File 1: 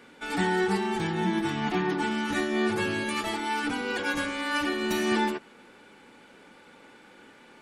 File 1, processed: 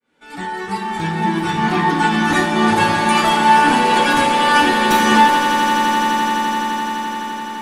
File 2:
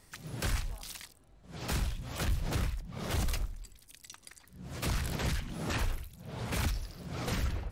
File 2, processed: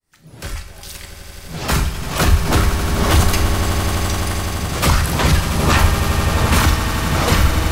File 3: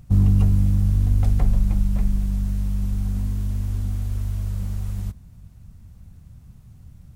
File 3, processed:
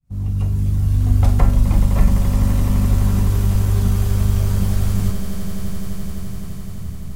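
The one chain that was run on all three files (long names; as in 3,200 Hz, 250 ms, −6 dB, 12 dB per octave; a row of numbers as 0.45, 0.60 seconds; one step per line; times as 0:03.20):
fade in at the beginning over 2.17 s
tuned comb filter 80 Hz, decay 0.26 s, harmonics all, mix 70%
dynamic equaliser 1,100 Hz, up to +6 dB, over −58 dBFS, Q 2.2
in parallel at −6 dB: soft clipping −30 dBFS
on the sum: reverb reduction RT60 1.5 s
on a send: echo that builds up and dies away 85 ms, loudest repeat 8, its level −12 dB
on the sum: four-comb reverb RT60 0.49 s, combs from 28 ms, DRR 7 dB
normalise the peak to −1.5 dBFS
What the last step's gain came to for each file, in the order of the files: +15.0, +20.0, +16.5 decibels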